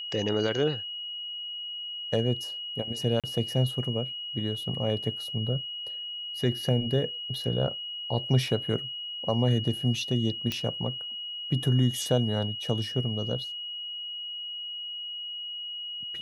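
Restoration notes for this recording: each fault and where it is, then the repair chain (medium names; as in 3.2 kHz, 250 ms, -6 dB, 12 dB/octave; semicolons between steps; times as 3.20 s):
whine 2.9 kHz -34 dBFS
3.20–3.24 s: dropout 37 ms
10.52 s: pop -15 dBFS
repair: de-click; band-stop 2.9 kHz, Q 30; interpolate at 3.20 s, 37 ms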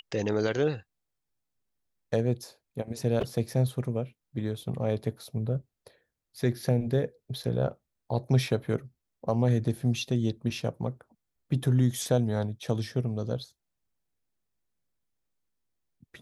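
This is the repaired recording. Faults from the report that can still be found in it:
nothing left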